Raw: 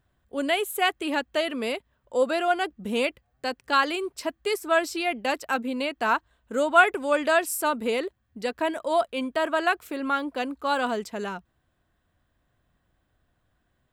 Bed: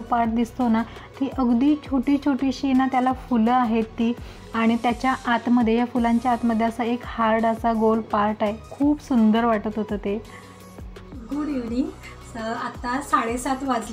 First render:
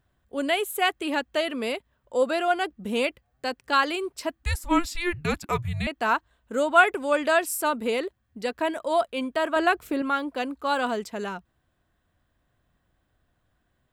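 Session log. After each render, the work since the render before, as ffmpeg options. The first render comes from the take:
-filter_complex "[0:a]asettb=1/sr,asplit=3[s0][s1][s2];[s0]atrim=end=4.434[s3];[s1]atrim=start=4.43:end=5.87,asetpts=PTS-STARTPTS,afade=t=in:d=0.004:c=qsin,afade=t=out:st=1.436:d=0.004:c=qsin,afreqshift=-350[s4];[s2]atrim=start=5.866[s5];[s3][s4]acrossfade=d=0.004:c1=hsin:c2=qsin[s6];[s6][s5]acrossfade=d=0.004:c1=qsin:c2=hsin,asettb=1/sr,asplit=3[s7][s8][s9];[s7]atrim=end=9.564[s10];[s8]atrim=start=9.56:end=10.02,asetpts=PTS-STARTPTS,afade=t=in:d=0.004:c=qsin,afade=t=out:st=0.456:d=0.004:c=qsin,lowshelf=f=380:g=10[s11];[s9]atrim=start=10.016[s12];[s10][s11]acrossfade=d=0.004:c1=hsin:c2=qsin[s13];[s13][s12]acrossfade=d=0.004:c1=qsin:c2=hsin"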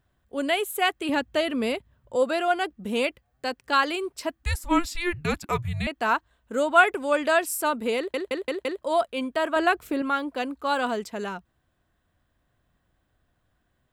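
-filter_complex "[0:a]asettb=1/sr,asplit=3[s0][s1][s2];[s0]atrim=end=1.094[s3];[s1]atrim=start=1.09:end=2.16,asetpts=PTS-STARTPTS,afade=t=in:d=0.004:c=qsin,afade=t=out:st=1.066:d=0.004:c=qsin,equalizer=f=96:w=0.58:g=12.5[s4];[s2]atrim=start=2.156[s5];[s3][s4]acrossfade=d=0.004:c1=hsin:c2=qsin[s6];[s6][s5]acrossfade=d=0.004:c1=qsin:c2=hsin,asplit=6[s7][s8][s9][s10][s11][s12];[s7]atrim=end=8.142[s13];[s8]atrim=start=7.968:end=8.142[s14];[s9]atrim=start=7.968:end=8.142[s15];[s10]atrim=start=7.968:end=8.142[s16];[s11]atrim=start=7.968:end=8.142[s17];[s12]atrim=start=8.818[s18];[s13][s14]acrossfade=d=0.004:c1=hsin:c2=hsin[s19];[s19][s15]acrossfade=d=0.004:c1=hsin:c2=hsin[s20];[s20][s16]acrossfade=d=0.004:c1=hsin:c2=hsin[s21];[s21][s17]acrossfade=d=0.004:c1=hsin:c2=hsin[s22];[s22][s18]acrossfade=d=0.004:c1=hsin:c2=hsin"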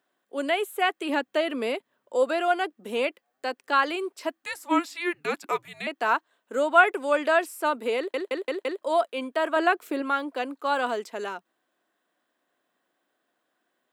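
-filter_complex "[0:a]acrossover=split=3000[s0][s1];[s1]acompressor=threshold=0.01:ratio=4:attack=1:release=60[s2];[s0][s2]amix=inputs=2:normalize=0,highpass=f=280:w=0.5412,highpass=f=280:w=1.3066"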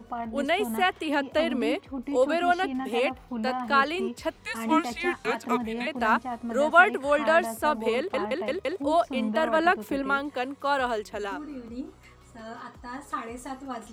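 -filter_complex "[1:a]volume=0.237[s0];[0:a][s0]amix=inputs=2:normalize=0"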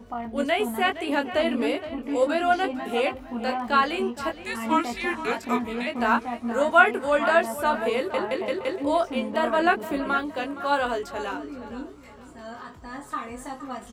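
-filter_complex "[0:a]asplit=2[s0][s1];[s1]adelay=21,volume=0.531[s2];[s0][s2]amix=inputs=2:normalize=0,asplit=2[s3][s4];[s4]adelay=467,lowpass=f=3700:p=1,volume=0.224,asplit=2[s5][s6];[s6]adelay=467,lowpass=f=3700:p=1,volume=0.39,asplit=2[s7][s8];[s8]adelay=467,lowpass=f=3700:p=1,volume=0.39,asplit=2[s9][s10];[s10]adelay=467,lowpass=f=3700:p=1,volume=0.39[s11];[s3][s5][s7][s9][s11]amix=inputs=5:normalize=0"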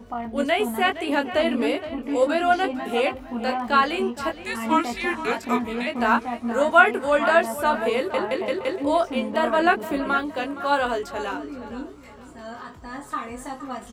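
-af "volume=1.26,alimiter=limit=0.794:level=0:latency=1"

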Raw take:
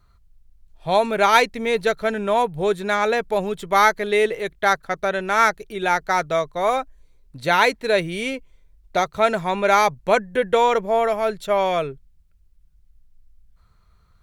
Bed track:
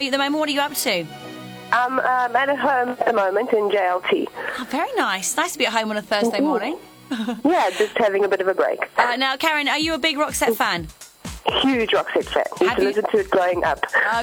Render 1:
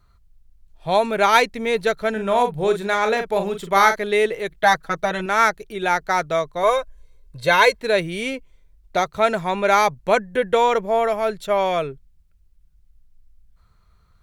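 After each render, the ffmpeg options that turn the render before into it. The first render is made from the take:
-filter_complex "[0:a]asettb=1/sr,asplit=3[s0][s1][s2];[s0]atrim=end=2.124[s3];[s1]atrim=start=2.12:end=3.96,asetpts=PTS-STARTPTS,afade=t=in:d=0.004:c=qsin,afade=t=out:st=1.836:d=0.004:c=qsin,asplit=2[s4][s5];[s5]adelay=41,volume=0.422[s6];[s4][s6]amix=inputs=2:normalize=0,atrim=end_sample=81144[s7];[s2]atrim=start=3.956[s8];[s3][s7]acrossfade=d=0.004:c1=hsin:c2=qsin[s9];[s9][s8]acrossfade=d=0.004:c1=qsin:c2=hsin,asettb=1/sr,asplit=3[s10][s11][s12];[s10]atrim=end=4.504[s13];[s11]atrim=start=4.5:end=5.26,asetpts=PTS-STARTPTS,afade=t=in:d=0.004:c=qsin,afade=t=out:st=0.756:d=0.004:c=qsin,aecho=1:1:6.2:0.9,atrim=end_sample=33516[s14];[s12]atrim=start=5.256[s15];[s13][s14]acrossfade=d=0.004:c1=hsin:c2=qsin[s16];[s16][s15]acrossfade=d=0.004:c1=qsin:c2=hsin,asettb=1/sr,asplit=3[s17][s18][s19];[s17]atrim=end=6.634[s20];[s18]atrim=start=6.63:end=7.8,asetpts=PTS-STARTPTS,afade=t=in:d=0.004:c=qsin,afade=t=out:st=1.166:d=0.004:c=qsin,aecho=1:1:1.9:0.76,atrim=end_sample=51597[s21];[s19]atrim=start=7.796[s22];[s20][s21]acrossfade=d=0.004:c1=hsin:c2=qsin[s23];[s23][s22]acrossfade=d=0.004:c1=qsin:c2=hsin"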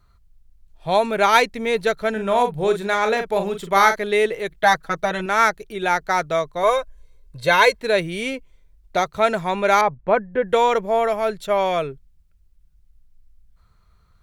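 -filter_complex "[0:a]asettb=1/sr,asplit=3[s0][s1][s2];[s0]atrim=end=9.814[s3];[s1]atrim=start=9.81:end=10.49,asetpts=PTS-STARTPTS,afade=t=in:d=0.004:c=qsin,afade=t=out:st=0.676:d=0.004:c=qsin,lowpass=1700[s4];[s2]atrim=start=10.486[s5];[s3][s4]acrossfade=d=0.004:c1=hsin:c2=qsin[s6];[s6][s5]acrossfade=d=0.004:c1=qsin:c2=hsin"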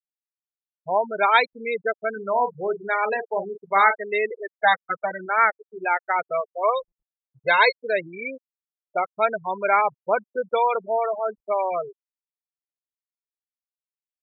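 -af "afftfilt=real='re*gte(hypot(re,im),0.2)':imag='im*gte(hypot(re,im),0.2)':win_size=1024:overlap=0.75,highpass=f=750:p=1"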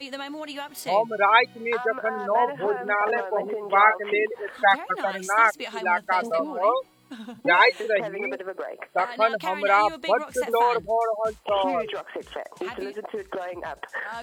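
-filter_complex "[1:a]volume=0.2[s0];[0:a][s0]amix=inputs=2:normalize=0"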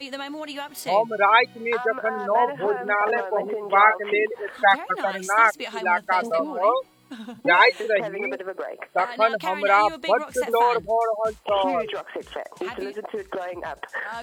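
-af "volume=1.19,alimiter=limit=0.708:level=0:latency=1"

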